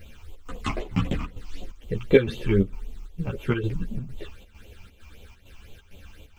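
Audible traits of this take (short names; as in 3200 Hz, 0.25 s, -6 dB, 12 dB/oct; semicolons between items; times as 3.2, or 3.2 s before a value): a quantiser's noise floor 12-bit, dither triangular; phasing stages 8, 3.9 Hz, lowest notch 480–1700 Hz; chopped level 2.2 Hz, depth 65%, duty 75%; a shimmering, thickened sound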